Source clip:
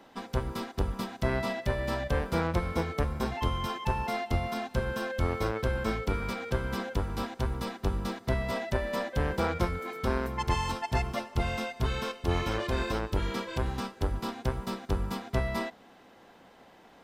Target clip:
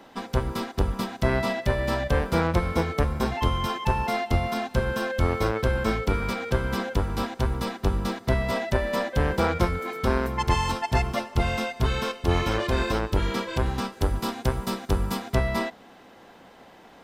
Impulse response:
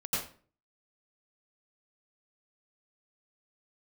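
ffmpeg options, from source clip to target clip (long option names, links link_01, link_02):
-filter_complex "[0:a]asettb=1/sr,asplit=3[link_01][link_02][link_03];[link_01]atrim=end=13.924[link_04];[link_02]atrim=start=13.92:end=15.35,asetpts=PTS-STARTPTS,afade=type=in:duration=0.004:curve=qsin,afade=type=out:start_time=1.426:duration=0.004:curve=qsin,equalizer=frequency=12000:width=0.43:gain=6[link_05];[link_03]atrim=start=15.346[link_06];[link_04][link_05]acrossfade=duration=0.004:curve1=hsin:curve2=qsin[link_07];[link_07][link_06]acrossfade=duration=0.004:curve1=qsin:curve2=hsin,volume=5.5dB"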